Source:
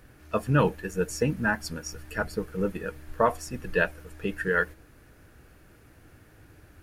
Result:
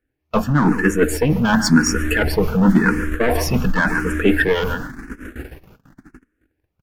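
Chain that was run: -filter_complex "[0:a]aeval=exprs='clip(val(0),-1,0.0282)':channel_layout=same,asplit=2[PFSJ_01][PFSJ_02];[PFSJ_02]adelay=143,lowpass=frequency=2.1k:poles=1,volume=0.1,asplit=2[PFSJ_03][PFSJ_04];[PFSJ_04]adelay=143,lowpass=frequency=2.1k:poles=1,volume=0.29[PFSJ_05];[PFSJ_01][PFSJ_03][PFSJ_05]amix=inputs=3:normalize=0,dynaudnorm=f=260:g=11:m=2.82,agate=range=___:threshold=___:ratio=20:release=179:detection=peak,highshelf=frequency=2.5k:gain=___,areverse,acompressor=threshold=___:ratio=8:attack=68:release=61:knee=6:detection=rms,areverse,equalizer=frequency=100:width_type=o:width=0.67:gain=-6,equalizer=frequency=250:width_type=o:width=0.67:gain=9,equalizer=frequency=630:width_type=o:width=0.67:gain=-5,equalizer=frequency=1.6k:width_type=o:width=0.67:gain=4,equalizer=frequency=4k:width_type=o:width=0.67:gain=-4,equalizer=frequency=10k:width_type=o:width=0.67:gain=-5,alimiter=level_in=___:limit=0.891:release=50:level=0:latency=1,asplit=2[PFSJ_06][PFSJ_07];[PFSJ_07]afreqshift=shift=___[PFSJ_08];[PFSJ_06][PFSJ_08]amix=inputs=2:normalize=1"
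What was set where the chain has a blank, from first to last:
0.01, 0.00562, -3.5, 0.02, 10, 0.93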